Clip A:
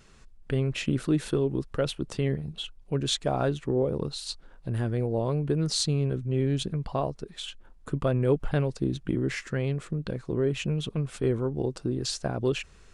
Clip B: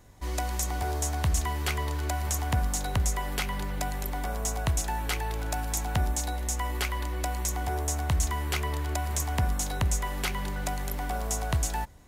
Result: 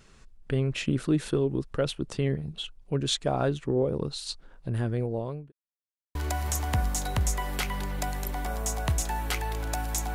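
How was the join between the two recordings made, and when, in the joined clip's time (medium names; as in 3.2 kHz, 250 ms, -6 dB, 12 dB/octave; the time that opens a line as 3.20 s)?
clip A
4.76–5.52 s: fade out equal-power
5.52–6.15 s: mute
6.15 s: go over to clip B from 1.94 s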